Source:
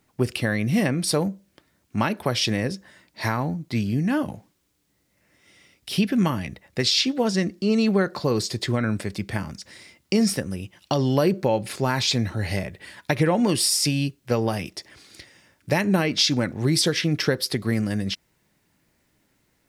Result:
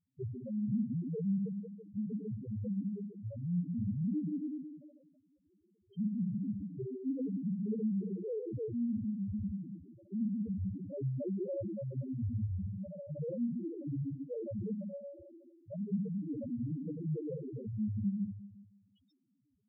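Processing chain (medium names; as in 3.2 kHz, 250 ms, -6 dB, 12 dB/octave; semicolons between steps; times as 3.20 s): local Wiener filter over 25 samples; reverse; compression 12:1, threshold -29 dBFS, peak gain reduction 14.5 dB; reverse; graphic EQ 500/2000/8000 Hz +6/-8/-4 dB; rotary cabinet horn 5.5 Hz; on a send: repeats whose band climbs or falls 140 ms, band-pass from 270 Hz, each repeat 0.7 oct, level -3 dB; on the sum: peak limiter -25.5 dBFS, peak gain reduction 7.5 dB; Schroeder reverb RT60 1.5 s, combs from 30 ms, DRR 0.5 dB; waveshaping leveller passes 1; peaking EQ 110 Hz +2.5 dB 2.4 oct; loudest bins only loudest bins 1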